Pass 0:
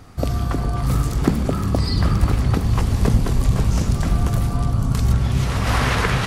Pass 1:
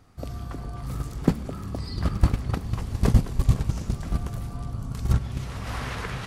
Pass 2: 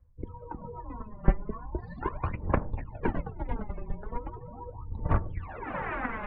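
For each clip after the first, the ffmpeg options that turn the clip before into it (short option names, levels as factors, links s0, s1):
-af "agate=range=0.224:threshold=0.2:ratio=16:detection=peak"
-af "aphaser=in_gain=1:out_gain=1:delay=5:decay=0.65:speed=0.39:type=sinusoidal,afftdn=nr=29:nf=-41,highpass=f=180:t=q:w=0.5412,highpass=f=180:t=q:w=1.307,lowpass=f=2500:t=q:w=0.5176,lowpass=f=2500:t=q:w=0.7071,lowpass=f=2500:t=q:w=1.932,afreqshift=-220"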